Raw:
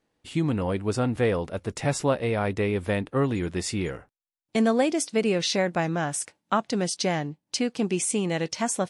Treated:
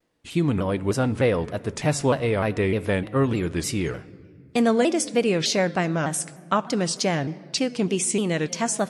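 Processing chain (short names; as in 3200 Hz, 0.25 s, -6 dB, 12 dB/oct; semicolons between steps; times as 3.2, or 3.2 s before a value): notch 810 Hz, Q 12; on a send at -15 dB: reverb RT60 1.9 s, pre-delay 7 ms; on the sum: shaped vibrato saw down 3.3 Hz, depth 160 cents; gain +2.5 dB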